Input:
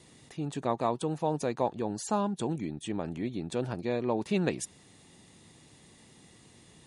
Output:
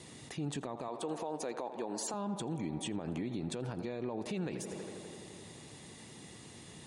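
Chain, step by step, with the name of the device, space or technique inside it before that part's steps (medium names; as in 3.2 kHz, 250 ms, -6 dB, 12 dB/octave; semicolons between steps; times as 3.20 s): 0.88–2.14 s: high-pass 320 Hz 12 dB/octave; tape echo 83 ms, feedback 87%, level -16.5 dB, low-pass 3.4 kHz; podcast mastering chain (high-pass 63 Hz; de-esser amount 80%; compression 3:1, threshold -37 dBFS, peak gain reduction 11 dB; peak limiter -33.5 dBFS, peak gain reduction 10 dB; trim +5.5 dB; MP3 96 kbps 44.1 kHz)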